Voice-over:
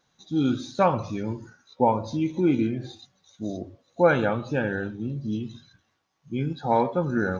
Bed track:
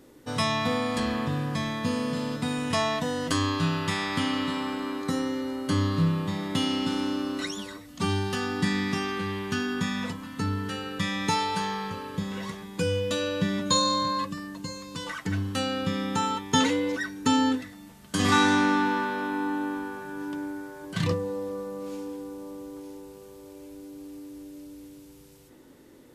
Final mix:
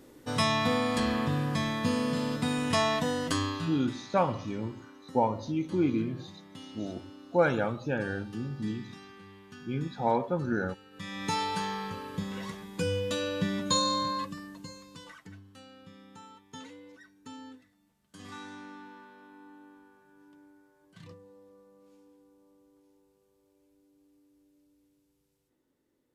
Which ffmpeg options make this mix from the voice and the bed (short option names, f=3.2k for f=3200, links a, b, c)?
-filter_complex "[0:a]adelay=3350,volume=-5dB[a];[1:a]volume=16dB,afade=t=out:st=3.09:d=0.79:silence=0.105925,afade=t=in:st=10.91:d=0.51:silence=0.149624,afade=t=out:st=14:d=1.41:silence=0.1[b];[a][b]amix=inputs=2:normalize=0"